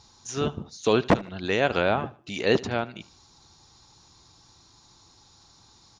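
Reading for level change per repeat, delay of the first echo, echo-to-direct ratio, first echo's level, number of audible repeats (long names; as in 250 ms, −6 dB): −9.0 dB, 75 ms, −20.0 dB, −20.5 dB, 2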